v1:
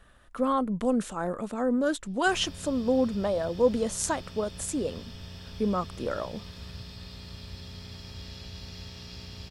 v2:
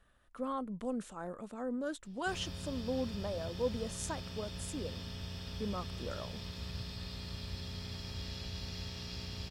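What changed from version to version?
speech -11.5 dB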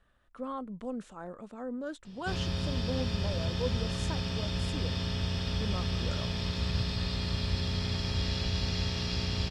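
background +11.5 dB; master: add air absorption 57 m

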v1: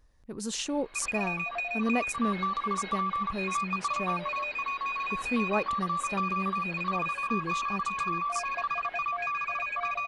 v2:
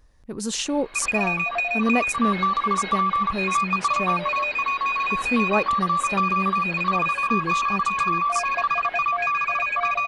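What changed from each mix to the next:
speech +6.5 dB; background +8.5 dB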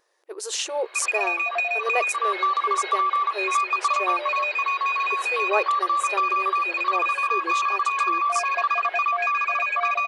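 master: add brick-wall FIR high-pass 330 Hz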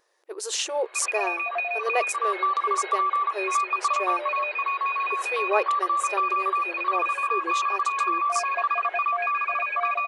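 background: add air absorption 300 m

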